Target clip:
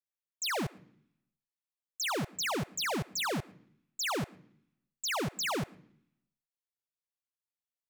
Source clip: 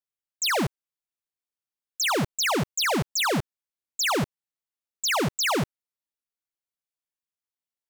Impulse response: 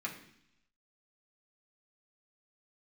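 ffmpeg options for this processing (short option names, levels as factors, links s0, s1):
-filter_complex "[0:a]asplit=2[s0][s1];[1:a]atrim=start_sample=2205,adelay=112[s2];[s1][s2]afir=irnorm=-1:irlink=0,volume=0.0708[s3];[s0][s3]amix=inputs=2:normalize=0,volume=0.376"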